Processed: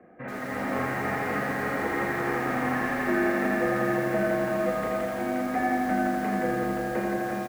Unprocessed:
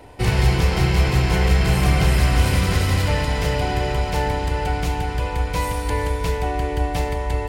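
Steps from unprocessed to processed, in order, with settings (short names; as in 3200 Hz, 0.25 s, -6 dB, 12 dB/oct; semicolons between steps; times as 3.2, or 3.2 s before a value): bell 450 Hz +4.5 dB 0.67 oct; limiter -11.5 dBFS, peak gain reduction 6 dB; AGC gain up to 8 dB; flange 0.52 Hz, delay 8.1 ms, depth 9.3 ms, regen +86%; doubler 37 ms -6.5 dB; mistuned SSB -240 Hz 480–2200 Hz; lo-fi delay 83 ms, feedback 80%, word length 7-bit, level -4 dB; gain -3.5 dB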